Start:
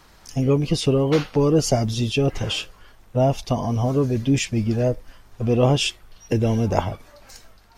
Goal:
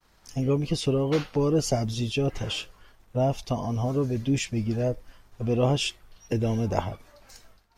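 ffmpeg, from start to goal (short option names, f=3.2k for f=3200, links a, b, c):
-af "agate=range=-33dB:threshold=-46dB:ratio=3:detection=peak,volume=-5.5dB"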